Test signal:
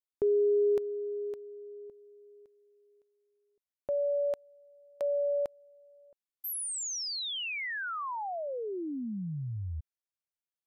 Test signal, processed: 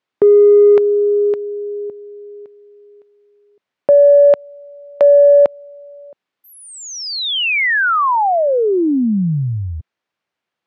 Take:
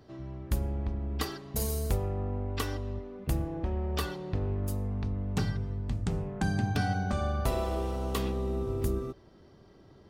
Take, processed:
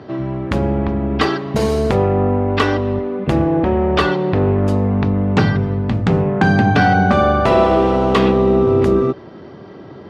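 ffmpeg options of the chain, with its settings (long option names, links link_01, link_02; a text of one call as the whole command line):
ffmpeg -i in.wav -af "aeval=exprs='0.168*(cos(1*acos(clip(val(0)/0.168,-1,1)))-cos(1*PI/2))+0.00168*(cos(7*acos(clip(val(0)/0.168,-1,1)))-cos(7*PI/2))':channel_layout=same,apsyclip=26.5dB,highpass=140,lowpass=2800,volume=-4.5dB" out.wav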